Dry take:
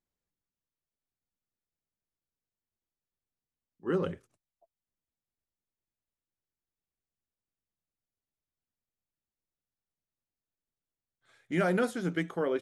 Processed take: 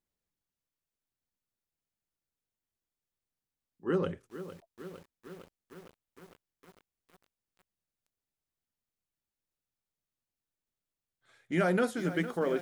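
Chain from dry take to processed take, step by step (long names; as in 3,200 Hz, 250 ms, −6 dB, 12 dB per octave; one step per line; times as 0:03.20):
feedback echo at a low word length 457 ms, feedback 80%, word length 8 bits, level −12.5 dB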